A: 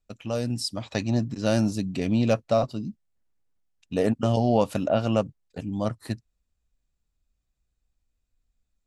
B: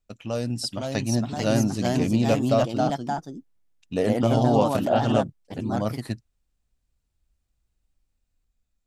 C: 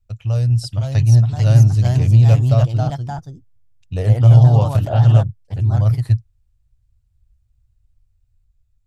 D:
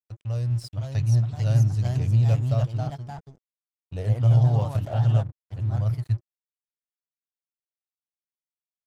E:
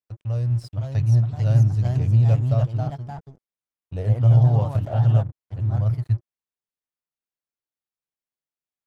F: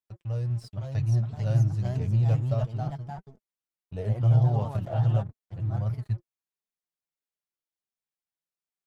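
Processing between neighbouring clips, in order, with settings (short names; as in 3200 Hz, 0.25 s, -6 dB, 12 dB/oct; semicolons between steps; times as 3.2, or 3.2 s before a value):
echoes that change speed 0.546 s, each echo +2 st, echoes 2
resonant low shelf 160 Hz +14 dB, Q 3; gain -1.5 dB
crossover distortion -38.5 dBFS; gain -9 dB
high shelf 2400 Hz -8.5 dB; gain +3 dB
flange 1.5 Hz, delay 4.4 ms, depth 2.1 ms, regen +40%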